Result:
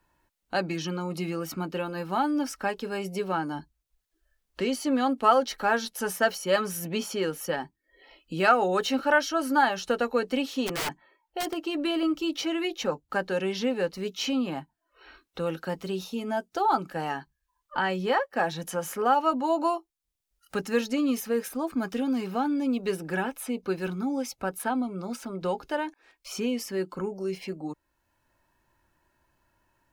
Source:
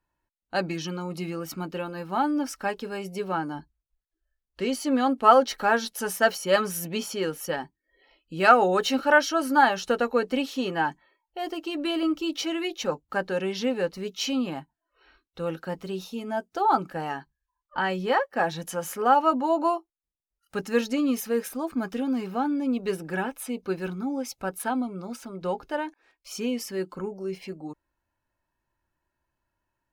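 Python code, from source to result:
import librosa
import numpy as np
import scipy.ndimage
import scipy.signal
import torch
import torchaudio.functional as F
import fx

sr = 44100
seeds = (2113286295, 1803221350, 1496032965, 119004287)

y = fx.overflow_wrap(x, sr, gain_db=23.5, at=(10.66, 11.52), fade=0.02)
y = fx.band_squash(y, sr, depth_pct=40)
y = y * librosa.db_to_amplitude(-1.0)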